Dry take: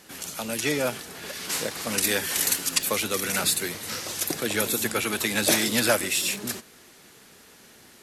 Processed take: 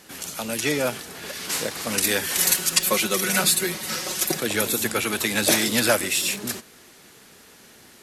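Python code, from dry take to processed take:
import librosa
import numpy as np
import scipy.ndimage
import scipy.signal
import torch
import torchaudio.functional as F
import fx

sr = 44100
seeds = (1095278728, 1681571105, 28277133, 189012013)

y = fx.comb(x, sr, ms=5.4, depth=0.82, at=(2.38, 4.4))
y = y * librosa.db_to_amplitude(2.0)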